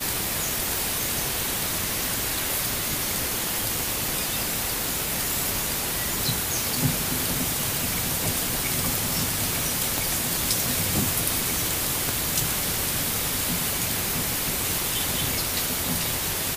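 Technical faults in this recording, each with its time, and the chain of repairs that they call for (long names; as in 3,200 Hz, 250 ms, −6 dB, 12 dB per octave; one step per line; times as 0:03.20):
0:00.77: click
0:05.03: click
0:09.98: click
0:12.09: click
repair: click removal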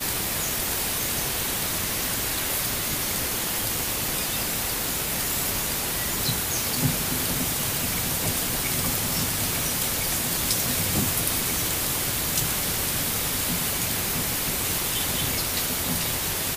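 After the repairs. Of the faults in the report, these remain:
none of them is left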